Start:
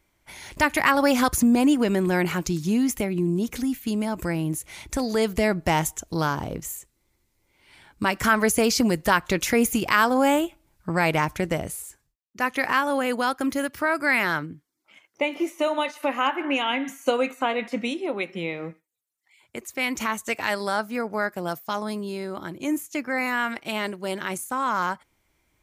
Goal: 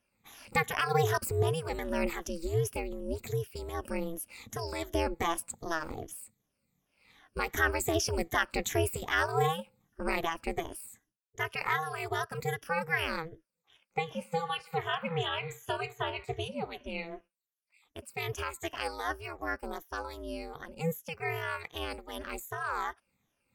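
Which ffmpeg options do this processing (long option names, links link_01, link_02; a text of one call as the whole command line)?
ffmpeg -i in.wav -af "afftfilt=real='re*pow(10,16/40*sin(2*PI*(1.1*log(max(b,1)*sr/1024/100)/log(2)-(-2.4)*(pts-256)/sr)))':imag='im*pow(10,16/40*sin(2*PI*(1.1*log(max(b,1)*sr/1024/100)/log(2)-(-2.4)*(pts-256)/sr)))':win_size=1024:overlap=0.75,aeval=exprs='val(0)*sin(2*PI*150*n/s)':channel_layout=same,asetrate=48000,aresample=44100,volume=-9dB" out.wav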